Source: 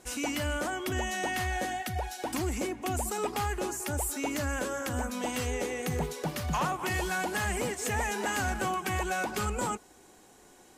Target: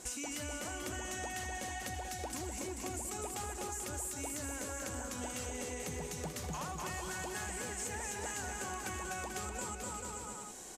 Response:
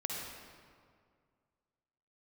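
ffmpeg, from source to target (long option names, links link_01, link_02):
-af "equalizer=frequency=7300:width_type=o:width=1:gain=9.5,aecho=1:1:250|437.5|578.1|683.6|762.7:0.631|0.398|0.251|0.158|0.1,acompressor=threshold=-43dB:ratio=4,volume=2dB"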